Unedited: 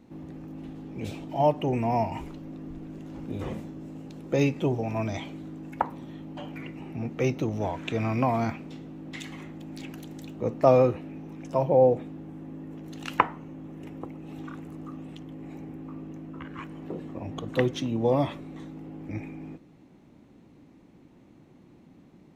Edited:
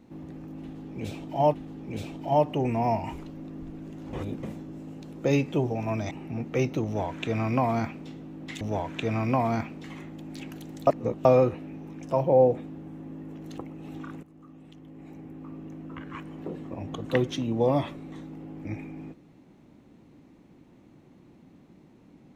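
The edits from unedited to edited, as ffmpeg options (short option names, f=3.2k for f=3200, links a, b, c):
-filter_complex "[0:a]asplit=11[a][b][c][d][e][f][g][h][i][j][k];[a]atrim=end=1.542[l];[b]atrim=start=0.618:end=3.212[m];[c]atrim=start=3.208:end=3.512,asetpts=PTS-STARTPTS,areverse[n];[d]atrim=start=3.508:end=5.192[o];[e]atrim=start=6.758:end=9.262[p];[f]atrim=start=7.498:end=8.732[q];[g]atrim=start=9.258:end=10.292[r];[h]atrim=start=10.288:end=10.672,asetpts=PTS-STARTPTS,areverse[s];[i]atrim=start=10.668:end=13.002[t];[j]atrim=start=14.018:end=14.67,asetpts=PTS-STARTPTS,afade=t=out:st=0.648:d=0.004:c=hsin:silence=0.177828[u];[k]atrim=start=14.67,asetpts=PTS-STARTPTS,afade=t=in:d=1.6:silence=0.177828[v];[l][m]acrossfade=d=0.004:c1=hsin:c2=hsin[w];[w][n]acrossfade=d=0.004:c1=hsin:c2=hsin[x];[x][o]acrossfade=d=0.004:c1=hsin:c2=hsin[y];[y][p]acrossfade=d=0.004:c1=hsin:c2=hsin[z];[z][q]acrossfade=d=0.004:c1=hsin:c2=hsin[aa];[aa][r]acrossfade=d=0.004:c1=hsin:c2=hsin[ab];[ab][s]acrossfade=d=0.004:c1=hsin:c2=hsin[ac];[ac][t]acrossfade=d=0.004:c1=hsin:c2=hsin[ad];[u][v]concat=n=2:v=0:a=1[ae];[ad][ae]acrossfade=d=0.004:c1=hsin:c2=hsin"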